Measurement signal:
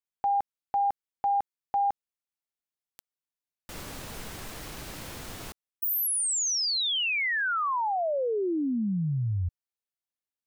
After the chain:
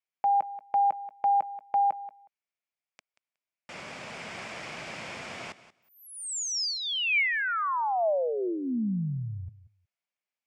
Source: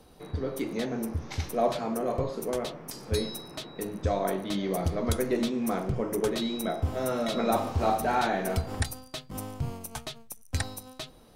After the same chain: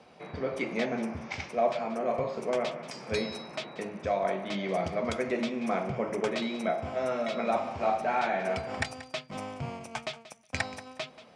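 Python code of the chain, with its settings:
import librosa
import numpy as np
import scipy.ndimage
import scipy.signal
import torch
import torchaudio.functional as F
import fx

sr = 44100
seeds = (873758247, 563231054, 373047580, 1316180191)

p1 = fx.cabinet(x, sr, low_hz=190.0, low_slope=12, high_hz=6600.0, hz=(300.0, 430.0, 640.0, 2300.0, 4000.0, 6200.0), db=(-8, -4, 4, 8, -7, -5))
p2 = p1 + fx.echo_feedback(p1, sr, ms=183, feedback_pct=15, wet_db=-16, dry=0)
y = fx.rider(p2, sr, range_db=3, speed_s=0.5)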